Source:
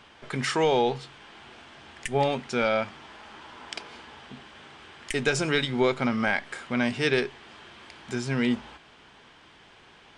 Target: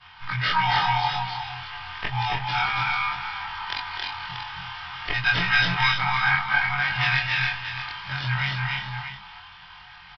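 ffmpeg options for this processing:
-filter_complex "[0:a]afftfilt=real='re':imag='-im':win_size=2048:overlap=0.75,afftfilt=real='re*(1-between(b*sr/4096,200,700))':imag='im*(1-between(b*sr/4096,200,700))':win_size=4096:overlap=0.75,agate=range=0.0224:threshold=0.002:ratio=3:detection=peak,aecho=1:1:3.2:0.49,asplit=2[s0][s1];[s1]acompressor=threshold=0.00631:ratio=4,volume=1.33[s2];[s0][s2]amix=inputs=2:normalize=0,acrusher=samples=5:mix=1:aa=0.000001,asplit=2[s3][s4];[s4]aecho=0:1:271|300|334|531|634:0.668|0.631|0.237|0.126|0.335[s5];[s3][s5]amix=inputs=2:normalize=0,aresample=11025,aresample=44100,volume=2.11"

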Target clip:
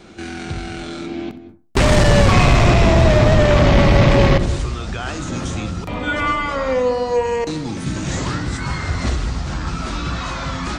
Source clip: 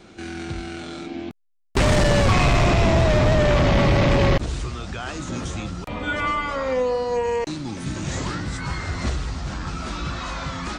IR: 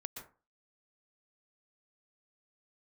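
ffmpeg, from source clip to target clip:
-filter_complex "[0:a]asplit=2[s0][s1];[1:a]atrim=start_sample=2205,lowshelf=f=390:g=8,adelay=64[s2];[s1][s2]afir=irnorm=-1:irlink=0,volume=0.316[s3];[s0][s3]amix=inputs=2:normalize=0,volume=1.58"

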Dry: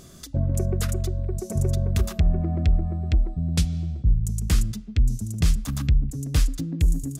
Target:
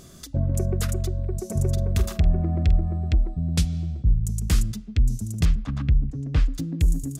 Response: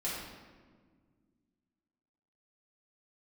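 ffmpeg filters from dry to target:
-filter_complex "[0:a]asettb=1/sr,asplit=3[s0][s1][s2];[s0]atrim=end=1.724[s3];[s1]atrim=start=1.72:end=3.08,asetpts=PTS-STARTPTS,afade=t=in:d=0.004:c=qsin,afade=t=out:st=1.356:d=0.004:c=qsin,asplit=2[s4][s5];[s5]adelay=47,volume=0.251[s6];[s4][s6]amix=inputs=2:normalize=0,atrim=end_sample=59976[s7];[s2]atrim=start=3.076[s8];[s3][s7]acrossfade=d=0.004:c1=hsin:c2=qsin[s9];[s9][s8]acrossfade=d=0.004:c1=qsin:c2=hsin,asettb=1/sr,asplit=3[s10][s11][s12];[s10]atrim=end=5.454[s13];[s11]atrim=start=5.45:end=6.55,asetpts=PTS-STARTPTS,afade=t=in:d=0.004:c=qsin,afade=t=out:st=1.096:d=0.004:c=qsin,lowpass=2600[s14];[s12]atrim=start=6.546[s15];[s13][s14]acrossfade=d=0.004:c1=hsin:c2=qsin[s16];[s16][s15]acrossfade=d=0.004:c1=qsin:c2=hsin"

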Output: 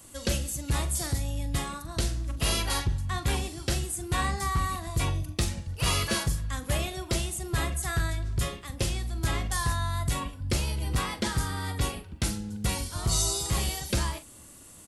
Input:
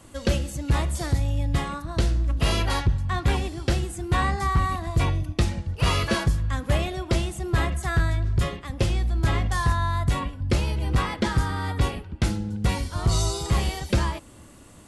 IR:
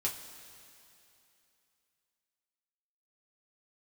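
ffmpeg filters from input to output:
-filter_complex "[0:a]aemphasis=mode=production:type=75kf,asplit=2[s0][s1];[s1]adelay=43,volume=0.251[s2];[s0][s2]amix=inputs=2:normalize=0,volume=0.473"

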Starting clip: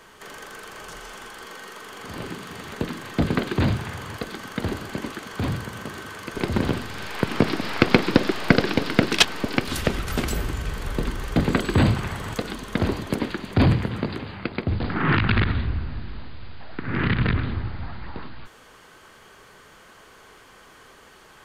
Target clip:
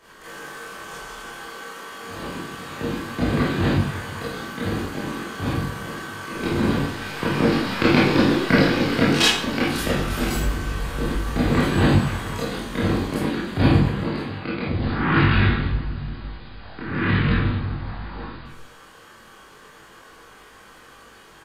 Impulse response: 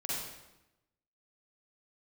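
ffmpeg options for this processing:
-filter_complex "[0:a]asplit=2[s0][s1];[s1]adelay=21,volume=0.708[s2];[s0][s2]amix=inputs=2:normalize=0[s3];[1:a]atrim=start_sample=2205,asetrate=74970,aresample=44100[s4];[s3][s4]afir=irnorm=-1:irlink=0,volume=1.19"

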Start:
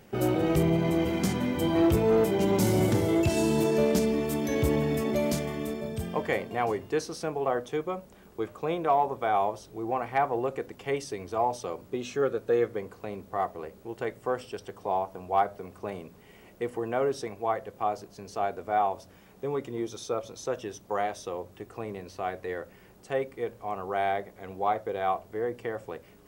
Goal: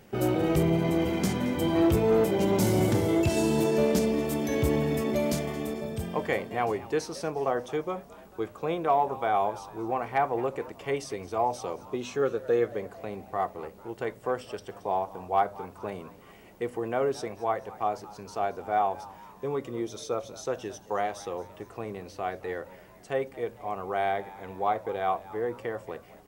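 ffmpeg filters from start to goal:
-filter_complex "[0:a]asplit=5[s0][s1][s2][s3][s4];[s1]adelay=223,afreqshift=98,volume=0.112[s5];[s2]adelay=446,afreqshift=196,volume=0.0582[s6];[s3]adelay=669,afreqshift=294,volume=0.0302[s7];[s4]adelay=892,afreqshift=392,volume=0.0158[s8];[s0][s5][s6][s7][s8]amix=inputs=5:normalize=0"

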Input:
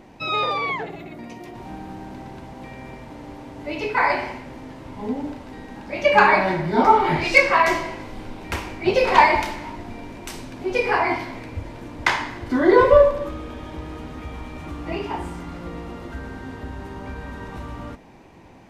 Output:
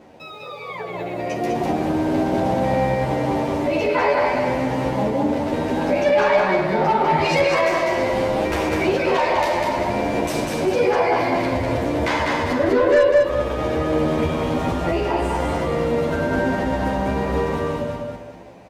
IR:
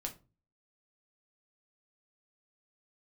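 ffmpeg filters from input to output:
-filter_complex "[0:a]highpass=69,equalizer=f=560:w=2.1:g=10.5,acontrast=83,alimiter=limit=0.0794:level=0:latency=1:release=239,dynaudnorm=f=130:g=17:m=5.96,aeval=exprs='sgn(val(0))*max(abs(val(0))-0.00355,0)':c=same,aecho=1:1:199|398|597|796:0.708|0.234|0.0771|0.0254,asplit=2[s0][s1];[s1]adelay=10.6,afreqshift=0.57[s2];[s0][s2]amix=inputs=2:normalize=1,volume=0.596"

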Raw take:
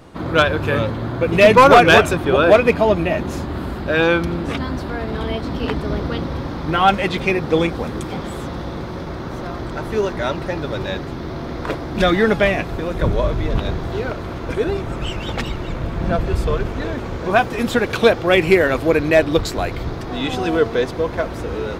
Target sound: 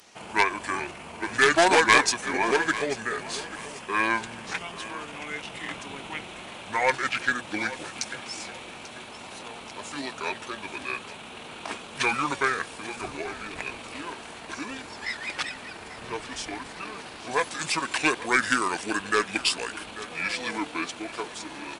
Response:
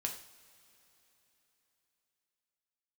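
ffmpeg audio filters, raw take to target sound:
-filter_complex "[0:a]aderivative,asetrate=29433,aresample=44100,atempo=1.49831,aeval=exprs='0.335*(cos(1*acos(clip(val(0)/0.335,-1,1)))-cos(1*PI/2))+0.0335*(cos(2*acos(clip(val(0)/0.335,-1,1)))-cos(2*PI/2))':c=same,asplit=2[s0][s1];[s1]aecho=0:1:840|1680|2520:0.158|0.0523|0.0173[s2];[s0][s2]amix=inputs=2:normalize=0,volume=2.24"

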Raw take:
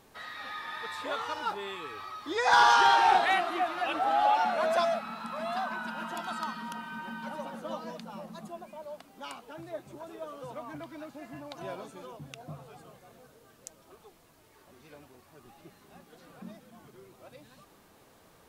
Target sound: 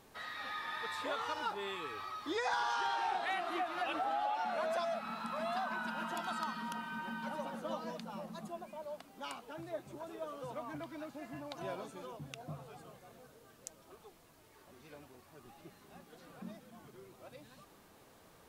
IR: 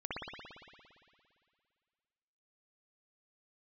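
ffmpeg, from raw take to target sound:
-af "acompressor=threshold=0.0282:ratio=6,volume=0.794"

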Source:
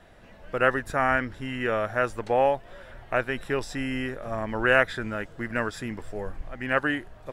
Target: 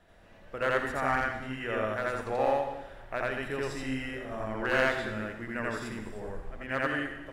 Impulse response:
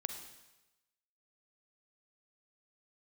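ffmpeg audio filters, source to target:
-filter_complex "[0:a]aeval=exprs='clip(val(0),-1,0.133)':c=same,bandreject=f=125.5:t=h:w=4,bandreject=f=251:t=h:w=4,bandreject=f=376.5:t=h:w=4,bandreject=f=502:t=h:w=4,bandreject=f=627.5:t=h:w=4,bandreject=f=753:t=h:w=4,bandreject=f=878.5:t=h:w=4,bandreject=f=1004:t=h:w=4,bandreject=f=1129.5:t=h:w=4,bandreject=f=1255:t=h:w=4,bandreject=f=1380.5:t=h:w=4,bandreject=f=1506:t=h:w=4,bandreject=f=1631.5:t=h:w=4,bandreject=f=1757:t=h:w=4,bandreject=f=1882.5:t=h:w=4,bandreject=f=2008:t=h:w=4,bandreject=f=2133.5:t=h:w=4,bandreject=f=2259:t=h:w=4,bandreject=f=2384.5:t=h:w=4,bandreject=f=2510:t=h:w=4,bandreject=f=2635.5:t=h:w=4,bandreject=f=2761:t=h:w=4,bandreject=f=2886.5:t=h:w=4,bandreject=f=3012:t=h:w=4,bandreject=f=3137.5:t=h:w=4,bandreject=f=3263:t=h:w=4,bandreject=f=3388.5:t=h:w=4,asplit=2[s0][s1];[1:a]atrim=start_sample=2205,adelay=84[s2];[s1][s2]afir=irnorm=-1:irlink=0,volume=1.41[s3];[s0][s3]amix=inputs=2:normalize=0,volume=0.376"

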